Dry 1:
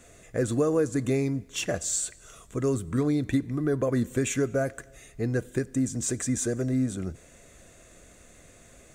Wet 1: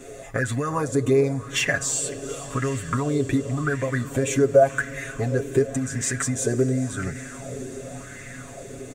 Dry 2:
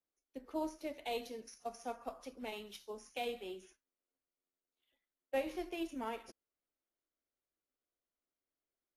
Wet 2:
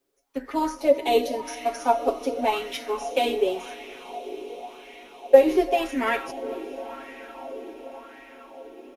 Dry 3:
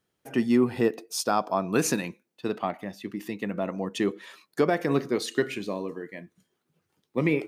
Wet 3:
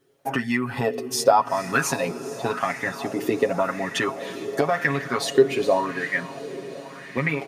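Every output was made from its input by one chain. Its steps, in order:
comb 7.3 ms, depth 87%; dynamic bell 340 Hz, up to -8 dB, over -36 dBFS, Q 1.4; compression 4:1, threshold -29 dBFS; on a send: echo that smears into a reverb 450 ms, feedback 78%, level -15 dB; on the sum: sweeping bell 0.91 Hz 360–2000 Hz +15 dB; normalise loudness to -24 LUFS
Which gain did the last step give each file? +5.0 dB, +12.0 dB, +5.5 dB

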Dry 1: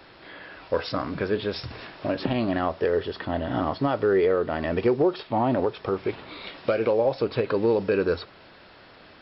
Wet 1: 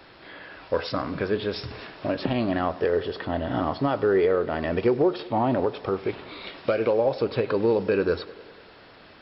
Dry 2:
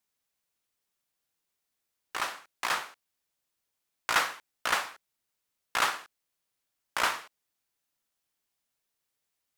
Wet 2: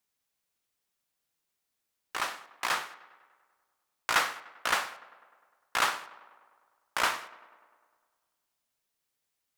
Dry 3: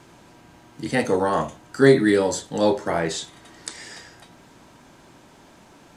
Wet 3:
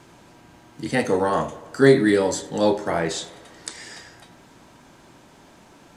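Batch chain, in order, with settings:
tape echo 99 ms, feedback 71%, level -18 dB, low-pass 3.4 kHz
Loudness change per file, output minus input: 0.0 LU, 0.0 LU, 0.0 LU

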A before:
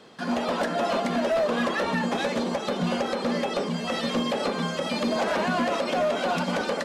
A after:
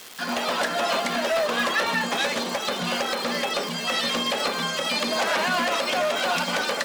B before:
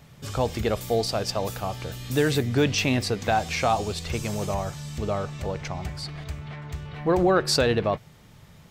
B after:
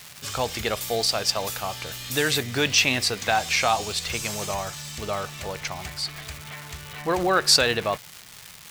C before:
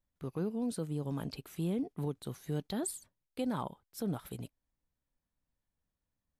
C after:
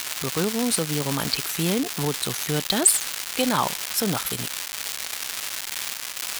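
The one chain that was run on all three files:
crackle 510 per s -36 dBFS; tilt shelf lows -7.5 dB, about 790 Hz; normalise loudness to -24 LUFS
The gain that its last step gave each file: +1.0 dB, +0.5 dB, +15.0 dB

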